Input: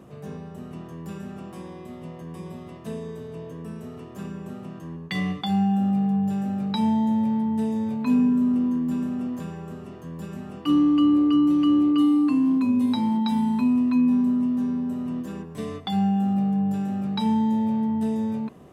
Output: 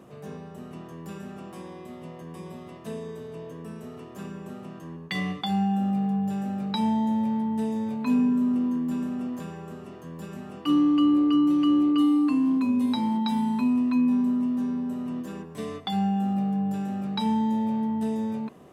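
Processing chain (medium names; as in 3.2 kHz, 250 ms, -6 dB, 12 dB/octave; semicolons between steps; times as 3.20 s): bass shelf 150 Hz -9 dB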